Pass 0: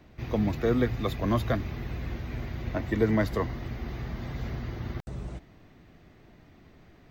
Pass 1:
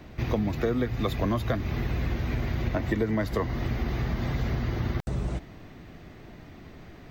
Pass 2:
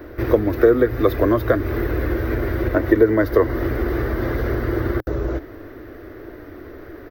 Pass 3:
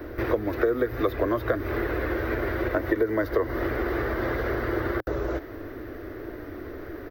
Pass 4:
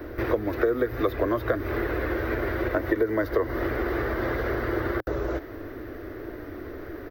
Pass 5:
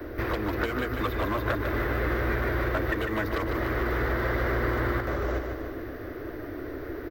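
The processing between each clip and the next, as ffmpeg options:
-af "acompressor=threshold=0.0251:ratio=6,volume=2.66"
-af "firequalizer=gain_entry='entry(110,0);entry(160,-17);entry(310,10);entry(540,9);entry(760,-2);entry(1500,8);entry(2500,-7);entry(5800,-5);entry(8700,-28);entry(13000,9)':delay=0.05:min_phase=1,volume=1.88"
-filter_complex "[0:a]acrossover=split=410|4500[s0][s1][s2];[s0]acompressor=threshold=0.0282:ratio=4[s3];[s1]acompressor=threshold=0.0631:ratio=4[s4];[s2]acompressor=threshold=0.00251:ratio=4[s5];[s3][s4][s5]amix=inputs=3:normalize=0"
-af anull
-filter_complex "[0:a]acrossover=split=260|670|2300[s0][s1][s2][s3];[s1]aeval=exprs='0.0266*(abs(mod(val(0)/0.0266+3,4)-2)-1)':c=same[s4];[s0][s4][s2][s3]amix=inputs=4:normalize=0,aecho=1:1:150|300|450|600|750|900|1050:0.501|0.276|0.152|0.0834|0.0459|0.0252|0.0139"

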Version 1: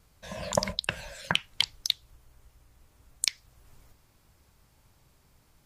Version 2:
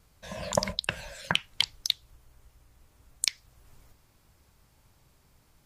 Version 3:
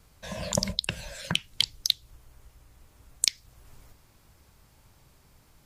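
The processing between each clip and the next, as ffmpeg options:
-af anull
-filter_complex "[0:a]acrossover=split=430|3000[s0][s1][s2];[s1]acompressor=threshold=0.00631:ratio=2.5[s3];[s0][s3][s2]amix=inputs=3:normalize=0,volume=1.58"

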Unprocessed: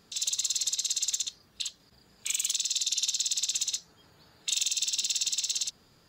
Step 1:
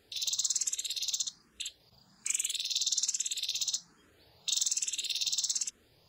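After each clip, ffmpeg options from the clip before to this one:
-filter_complex "[0:a]asplit=2[s0][s1];[s1]afreqshift=1.2[s2];[s0][s2]amix=inputs=2:normalize=1"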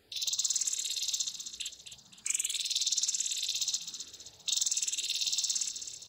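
-af "aecho=1:1:261|522|783|1044|1305:0.335|0.144|0.0619|0.0266|0.0115"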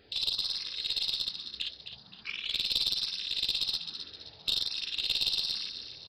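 -af "aresample=11025,aresample=44100,aeval=exprs='(tanh(14.1*val(0)+0.25)-tanh(0.25))/14.1':c=same,volume=2"

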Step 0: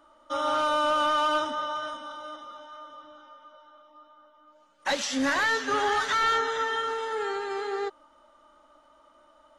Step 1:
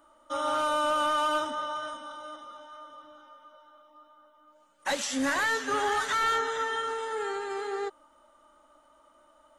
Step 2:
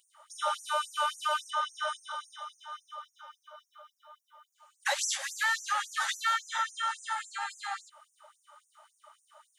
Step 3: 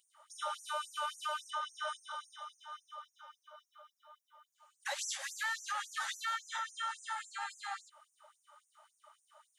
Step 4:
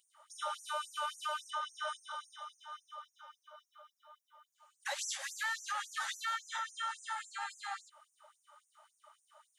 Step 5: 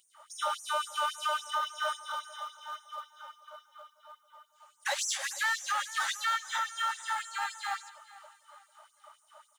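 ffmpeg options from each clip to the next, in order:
-af "highshelf=f=6700:t=q:w=1.5:g=6.5,volume=0.794"
-af "acompressor=threshold=0.0282:ratio=6,afftfilt=real='re*gte(b*sr/1024,540*pow(5800/540,0.5+0.5*sin(2*PI*3.6*pts/sr)))':imag='im*gte(b*sr/1024,540*pow(5800/540,0.5+0.5*sin(2*PI*3.6*pts/sr)))':win_size=1024:overlap=0.75,volume=2.11"
-af "alimiter=limit=0.0668:level=0:latency=1:release=95,volume=0.562"
-af anull
-filter_complex "[0:a]asplit=2[s0][s1];[s1]acrusher=bits=2:mode=log:mix=0:aa=0.000001,volume=0.282[s2];[s0][s2]amix=inputs=2:normalize=0,aecho=1:1:446|892|1338:0.119|0.0416|0.0146,volume=1.68"

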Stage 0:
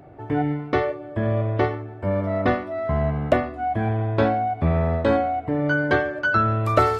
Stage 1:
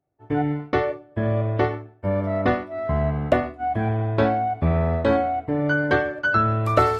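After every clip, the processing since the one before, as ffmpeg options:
-af "bandreject=f=320.9:t=h:w=4,bandreject=f=641.8:t=h:w=4,bandreject=f=962.7:t=h:w=4,bandreject=f=1283.6:t=h:w=4,bandreject=f=1604.5:t=h:w=4,bandreject=f=1925.4:t=h:w=4,bandreject=f=2246.3:t=h:w=4,bandreject=f=2567.2:t=h:w=4,bandreject=f=2888.1:t=h:w=4,bandreject=f=3209:t=h:w=4,bandreject=f=3529.9:t=h:w=4,bandreject=f=3850.8:t=h:w=4,bandreject=f=4171.7:t=h:w=4,bandreject=f=4492.6:t=h:w=4,bandreject=f=4813.5:t=h:w=4,bandreject=f=5134.4:t=h:w=4,bandreject=f=5455.3:t=h:w=4,bandreject=f=5776.2:t=h:w=4,bandreject=f=6097.1:t=h:w=4,bandreject=f=6418:t=h:w=4,bandreject=f=6738.9:t=h:w=4,bandreject=f=7059.8:t=h:w=4,bandreject=f=7380.7:t=h:w=4,bandreject=f=7701.6:t=h:w=4,bandreject=f=8022.5:t=h:w=4,bandreject=f=8343.4:t=h:w=4,bandreject=f=8664.3:t=h:w=4,bandreject=f=8985.2:t=h:w=4,bandreject=f=9306.1:t=h:w=4,bandreject=f=9627:t=h:w=4,bandreject=f=9947.9:t=h:w=4,bandreject=f=10268.8:t=h:w=4,bandreject=f=10589.7:t=h:w=4,bandreject=f=10910.6:t=h:w=4,bandreject=f=11231.5:t=h:w=4,bandreject=f=11552.4:t=h:w=4,bandreject=f=11873.3:t=h:w=4,agate=range=0.0224:threshold=0.0501:ratio=3:detection=peak"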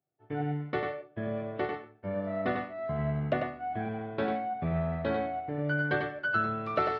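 -af "highpass=140,equalizer=f=150:t=q:w=4:g=3,equalizer=f=290:t=q:w=4:g=-5,equalizer=f=540:t=q:w=4:g=-3,equalizer=f=970:t=q:w=4:g=-7,lowpass=f=4400:w=0.5412,lowpass=f=4400:w=1.3066,aecho=1:1:96:0.562,volume=0.376"

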